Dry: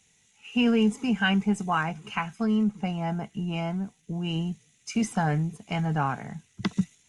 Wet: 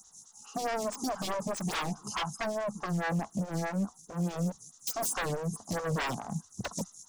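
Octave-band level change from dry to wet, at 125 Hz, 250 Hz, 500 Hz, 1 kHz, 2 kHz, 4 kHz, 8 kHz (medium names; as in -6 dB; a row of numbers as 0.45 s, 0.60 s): -6.0 dB, -10.0 dB, -1.5 dB, -4.0 dB, -6.5 dB, -5.0 dB, +6.0 dB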